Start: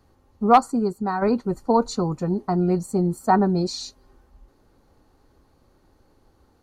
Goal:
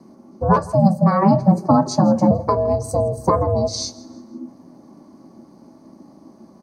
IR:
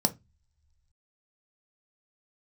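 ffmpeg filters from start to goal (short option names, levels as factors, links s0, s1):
-filter_complex "[0:a]asettb=1/sr,asplit=3[s0][s1][s2];[s0]atrim=end=2.964[s3];[s1]atrim=start=2.96:end=3.73,asetpts=PTS-STARTPTS,afade=t=in:d=0.004:c=qsin,afade=t=out:st=0.766:d=0.004:c=qsin,tiltshelf=f=970:g=4[s4];[s2]atrim=start=3.726[s5];[s3][s4]acrossfade=d=0.004:c1=hsin:c2=qsin[s6];[s6][s5]acrossfade=d=0.004:c1=qsin:c2=hsin,acompressor=threshold=0.0708:ratio=10,aeval=exprs='val(0)*sin(2*PI*290*n/s)':c=same,asettb=1/sr,asplit=3[s7][s8][s9];[s7]atrim=end=0.564[s10];[s8]atrim=start=0.56:end=2.31,asetpts=PTS-STARTPTS,afade=t=in:d=0.004:c=qsin,afade=t=out:st=1.746:d=0.004:c=qsin,afreqshift=86[s11];[s9]atrim=start=2.306[s12];[s10][s11]acrossfade=d=0.004:c1=hsin:c2=qsin[s13];[s13][s12]acrossfade=d=0.004:c1=qsin:c2=hsin,aecho=1:1:163|326|489:0.0891|0.0321|0.0116[s14];[1:a]atrim=start_sample=2205,afade=t=out:st=0.31:d=0.01,atrim=end_sample=14112,asetrate=48510,aresample=44100[s15];[s14][s15]afir=irnorm=-1:irlink=0,volume=1.26"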